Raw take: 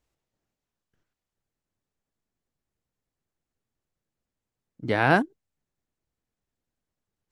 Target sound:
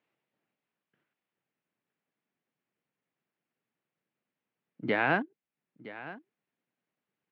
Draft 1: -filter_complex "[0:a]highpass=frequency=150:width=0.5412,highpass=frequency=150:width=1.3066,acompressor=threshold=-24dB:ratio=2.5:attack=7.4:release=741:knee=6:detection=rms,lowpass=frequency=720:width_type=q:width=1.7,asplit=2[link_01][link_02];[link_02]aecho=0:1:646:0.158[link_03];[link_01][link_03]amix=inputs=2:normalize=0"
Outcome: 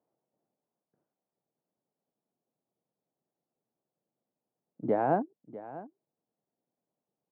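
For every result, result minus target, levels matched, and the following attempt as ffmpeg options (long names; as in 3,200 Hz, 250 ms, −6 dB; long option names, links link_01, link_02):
2,000 Hz band −15.0 dB; echo 318 ms early
-filter_complex "[0:a]highpass=frequency=150:width=0.5412,highpass=frequency=150:width=1.3066,acompressor=threshold=-24dB:ratio=2.5:attack=7.4:release=741:knee=6:detection=rms,lowpass=frequency=2500:width_type=q:width=1.7,asplit=2[link_01][link_02];[link_02]aecho=0:1:646:0.158[link_03];[link_01][link_03]amix=inputs=2:normalize=0"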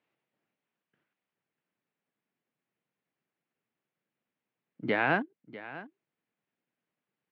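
echo 318 ms early
-filter_complex "[0:a]highpass=frequency=150:width=0.5412,highpass=frequency=150:width=1.3066,acompressor=threshold=-24dB:ratio=2.5:attack=7.4:release=741:knee=6:detection=rms,lowpass=frequency=2500:width_type=q:width=1.7,asplit=2[link_01][link_02];[link_02]aecho=0:1:964:0.158[link_03];[link_01][link_03]amix=inputs=2:normalize=0"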